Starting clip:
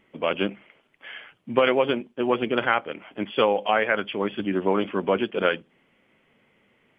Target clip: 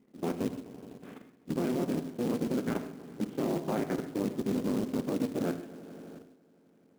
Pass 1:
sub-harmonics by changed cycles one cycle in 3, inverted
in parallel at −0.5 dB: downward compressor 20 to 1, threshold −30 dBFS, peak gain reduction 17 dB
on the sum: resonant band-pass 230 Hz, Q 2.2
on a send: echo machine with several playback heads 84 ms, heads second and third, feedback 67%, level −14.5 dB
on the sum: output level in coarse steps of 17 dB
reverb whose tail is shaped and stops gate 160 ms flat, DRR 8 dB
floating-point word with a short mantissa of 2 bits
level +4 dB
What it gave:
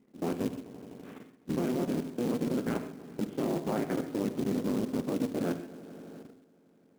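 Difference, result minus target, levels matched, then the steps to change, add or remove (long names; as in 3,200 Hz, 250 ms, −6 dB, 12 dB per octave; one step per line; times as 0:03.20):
downward compressor: peak gain reduction −7.5 dB
change: downward compressor 20 to 1, threshold −38 dBFS, peak gain reduction 24.5 dB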